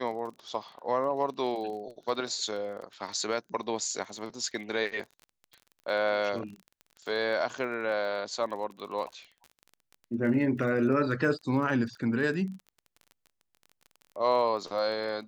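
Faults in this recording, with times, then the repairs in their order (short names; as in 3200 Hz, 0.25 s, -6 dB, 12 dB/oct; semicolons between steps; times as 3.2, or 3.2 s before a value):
crackle 25/s -39 dBFS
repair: de-click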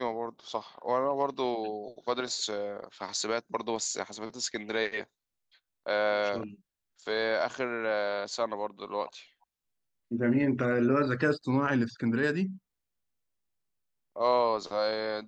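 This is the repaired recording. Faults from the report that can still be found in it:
none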